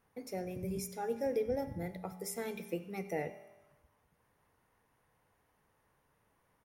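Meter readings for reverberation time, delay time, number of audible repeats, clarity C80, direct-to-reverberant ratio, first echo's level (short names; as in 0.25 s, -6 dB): 1.1 s, 94 ms, 1, 13.5 dB, 9.5 dB, -21.0 dB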